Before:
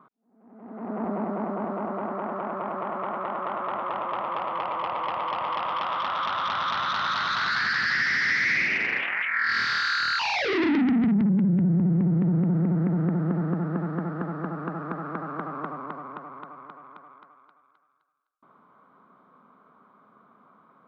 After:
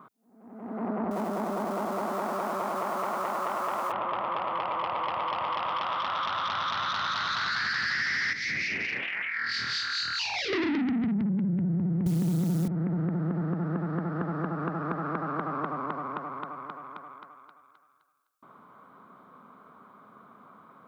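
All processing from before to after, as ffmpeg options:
ffmpeg -i in.wav -filter_complex "[0:a]asettb=1/sr,asplit=3[link_01][link_02][link_03];[link_01]atrim=end=1.114[link_04];[link_02]atrim=start=1.11:end=3.92,asetpts=PTS-STARTPTS,afade=type=in:duration=0.004:curve=qsin,afade=type=out:start_time=2.806:duration=0.004:curve=qsin,aeval=exprs='val(0)+0.5*0.00794*sgn(val(0))':channel_layout=same,lowshelf=frequency=140:gain=-10[link_05];[link_03]atrim=start=3.916[link_06];[link_04][link_05]acrossfade=duration=0.004:curve1=hsin:curve2=qsin[link_07];[link_07][link_06]acrossfade=duration=0.004:curve1=qsin:curve2=hsin,asettb=1/sr,asplit=3[link_08][link_09][link_10];[link_08]atrim=end=8.334[link_11];[link_09]atrim=start=8.33:end=10.53,asetpts=PTS-STARTPTS,afade=type=in:duration=0.004:curve=qsin,afade=type=out:start_time=2.196:duration=0.004:curve=qsin,equalizer=frequency=1100:width=0.79:gain=-9.5,acrossover=split=2000[link_12][link_13];[link_12]aeval=exprs='val(0)*(1-0.7/2+0.7/2*cos(2*PI*4.5*n/s))':channel_layout=same[link_14];[link_13]aeval=exprs='val(0)*(1-0.7/2-0.7/2*cos(2*PI*4.5*n/s))':channel_layout=same[link_15];[link_14][link_15]amix=inputs=2:normalize=0[link_16];[link_10]atrim=start=10.526[link_17];[link_11][link_16]acrossfade=duration=0.004:curve1=hsin:curve2=qsin[link_18];[link_18][link_17]acrossfade=duration=0.004:curve1=qsin:curve2=hsin,asettb=1/sr,asplit=3[link_19][link_20][link_21];[link_19]atrim=end=12.064[link_22];[link_20]atrim=start=12.06:end=12.68,asetpts=PTS-STARTPTS,afade=type=in:duration=0.004:curve=qsin,afade=type=out:start_time=0.616:duration=0.004:curve=qsin,highpass=frequency=47:width=0.5412,highpass=frequency=47:width=1.3066,acontrast=44,acrusher=bits=7:dc=4:mix=0:aa=0.000001[link_23];[link_21]atrim=start=12.676[link_24];[link_22][link_23]acrossfade=duration=0.004:curve1=hsin:curve2=qsin[link_25];[link_25][link_24]acrossfade=duration=0.004:curve1=qsin:curve2=hsin,highshelf=frequency=5300:gain=9,acompressor=threshold=-32dB:ratio=4,equalizer=frequency=100:width=2.4:gain=5,volume=4dB" out.wav

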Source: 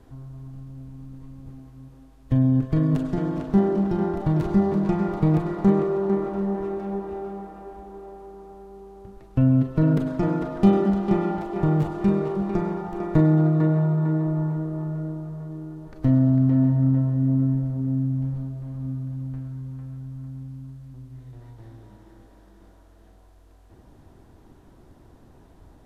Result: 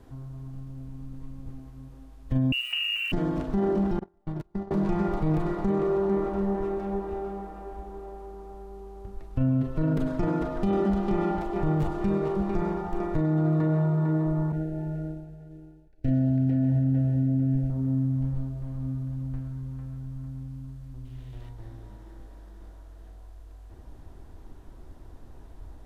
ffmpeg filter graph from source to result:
ffmpeg -i in.wav -filter_complex "[0:a]asettb=1/sr,asplit=3[link_01][link_02][link_03];[link_01]atrim=end=2.524[link_04];[link_02]atrim=start=2.52:end=3.12,asetpts=PTS-STARTPTS,afade=type=in:duration=0.004:curve=qsin,afade=type=out:start_time=0.596:duration=0.004:curve=qsin,lowpass=frequency=2600:width_type=q:width=0.5098,lowpass=frequency=2600:width_type=q:width=0.6013,lowpass=frequency=2600:width_type=q:width=0.9,lowpass=frequency=2600:width_type=q:width=2.563,afreqshift=-3000,acompressor=threshold=-26dB:ratio=5:attack=3.2:release=140:knee=1:detection=peak,aeval=exprs='val(0)*gte(abs(val(0)),0.00668)':channel_layout=same[link_05];[link_03]atrim=start=3.116[link_06];[link_04][link_05]acrossfade=duration=0.004:curve1=hsin:curve2=qsin[link_07];[link_07][link_06]acrossfade=duration=0.004:curve1=qsin:curve2=hsin,asettb=1/sr,asplit=3[link_08][link_09][link_10];[link_08]atrim=end=3.994[link_11];[link_09]atrim=start=3.99:end=4.71,asetpts=PTS-STARTPTS,afade=type=in:duration=0.004:curve=qsin,afade=type=out:start_time=0.716:duration=0.004:curve=qsin,agate=range=-39dB:threshold=-20dB:ratio=16:release=100:detection=peak,acompressor=threshold=-26dB:ratio=6:attack=3.2:release=140:knee=1:detection=peak[link_12];[link_10]atrim=start=4.706[link_13];[link_11][link_12]acrossfade=duration=0.004:curve1=hsin:curve2=qsin[link_14];[link_14][link_13]acrossfade=duration=0.004:curve1=qsin:curve2=hsin,asettb=1/sr,asplit=3[link_15][link_16][link_17];[link_15]atrim=end=14.524[link_18];[link_16]atrim=start=14.52:end=17.7,asetpts=PTS-STARTPTS,afade=type=in:duration=0.004:curve=qsin,afade=type=out:start_time=3.176:duration=0.004:curve=qsin,agate=range=-33dB:threshold=-28dB:ratio=3:release=100:detection=peak,asuperstop=centerf=1100:order=20:qfactor=2.3,equalizer=frequency=2600:width_type=o:width=0.26:gain=6.5[link_19];[link_17]atrim=start=17.696[link_20];[link_18][link_19]acrossfade=duration=0.004:curve1=hsin:curve2=qsin[link_21];[link_21][link_20]acrossfade=duration=0.004:curve1=qsin:curve2=hsin,asettb=1/sr,asplit=3[link_22][link_23][link_24];[link_22]atrim=end=21.054[link_25];[link_23]atrim=start=21.05:end=21.49,asetpts=PTS-STARTPTS,afade=type=in:duration=0.004:curve=qsin,afade=type=out:start_time=0.436:duration=0.004:curve=qsin,aeval=exprs='val(0)+0.5*0.00119*sgn(val(0))':channel_layout=same,equalizer=frequency=3000:width_type=o:width=0.8:gain=10.5[link_26];[link_24]atrim=start=21.486[link_27];[link_25][link_26]acrossfade=duration=0.004:curve1=hsin:curve2=qsin[link_28];[link_28][link_27]acrossfade=duration=0.004:curve1=qsin:curve2=hsin,asubboost=boost=3.5:cutoff=70,alimiter=limit=-17.5dB:level=0:latency=1:release=28" out.wav

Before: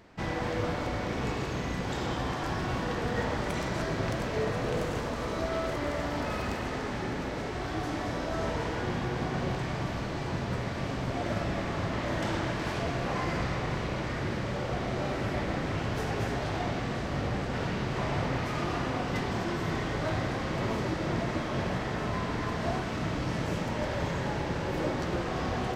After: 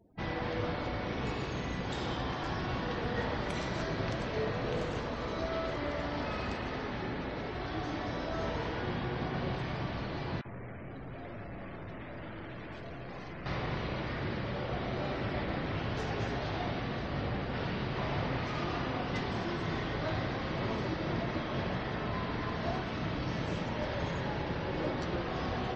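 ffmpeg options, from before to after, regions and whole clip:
ffmpeg -i in.wav -filter_complex "[0:a]asettb=1/sr,asplit=3[link_01][link_02][link_03];[link_01]atrim=end=10.414[link_04];[link_02]atrim=start=10.41:end=13.46,asetpts=PTS-STARTPTS,afade=type=in:duration=0.004:curve=qsin,afade=type=out:start_time=3.046:duration=0.004:curve=qsin,aeval=exprs='(tanh(70.8*val(0)+0.4)-tanh(0.4))/70.8':channel_layout=same,acrossover=split=960|3400[link_05][link_06][link_07];[link_05]adelay=40[link_08];[link_07]adelay=500[link_09];[link_08][link_06][link_09]amix=inputs=3:normalize=0,atrim=end_sample=134505[link_10];[link_03]atrim=start=13.456[link_11];[link_04][link_10]acrossfade=duration=0.004:curve1=hsin:curve2=qsin[link_12];[link_12][link_11]acrossfade=duration=0.004:curve1=qsin:curve2=hsin,afftdn=noise_reduction=34:noise_floor=-50,equalizer=frequency=3800:width=1.4:gain=4,volume=-3.5dB" out.wav

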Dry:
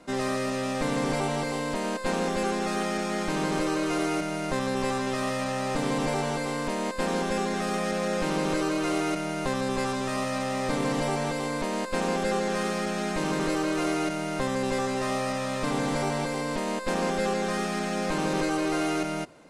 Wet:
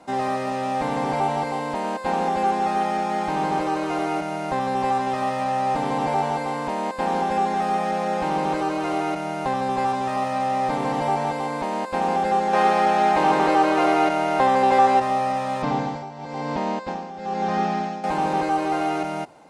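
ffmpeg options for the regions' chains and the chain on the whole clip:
ffmpeg -i in.wav -filter_complex "[0:a]asettb=1/sr,asplit=3[link_01][link_02][link_03];[link_01]atrim=end=12.534[link_04];[link_02]atrim=start=12.53:end=15,asetpts=PTS-STARTPTS,afade=type=in:duration=0.004:curve=qsin,afade=type=out:start_time=2.466:duration=0.004:curve=qsin,bass=frequency=250:gain=-9,treble=frequency=4000:gain=0,acontrast=77[link_05];[link_03]atrim=start=14.996[link_06];[link_04][link_05]acrossfade=duration=0.004:curve1=hsin:curve2=qsin[link_07];[link_07][link_06]acrossfade=duration=0.004:curve1=qsin:curve2=hsin,asettb=1/sr,asplit=3[link_08][link_09][link_10];[link_08]atrim=end=15.624[link_11];[link_09]atrim=start=15.62:end=18.04,asetpts=PTS-STARTPTS,afade=type=in:duration=0.004:curve=qsin,afade=type=out:start_time=2.416:duration=0.004:curve=qsin,lowpass=frequency=6200:width=0.5412,lowpass=frequency=6200:width=1.3066,equalizer=frequency=130:width=0.53:gain=6,tremolo=f=1:d=0.84[link_12];[link_10]atrim=start=18.036[link_13];[link_11][link_12]acrossfade=duration=0.004:curve1=hsin:curve2=qsin[link_14];[link_14][link_13]acrossfade=duration=0.004:curve1=qsin:curve2=hsin,acrossover=split=3800[link_15][link_16];[link_16]acompressor=threshold=-46dB:ratio=4:attack=1:release=60[link_17];[link_15][link_17]amix=inputs=2:normalize=0,highpass=42,equalizer=frequency=820:width_type=o:width=0.4:gain=14.5" out.wav

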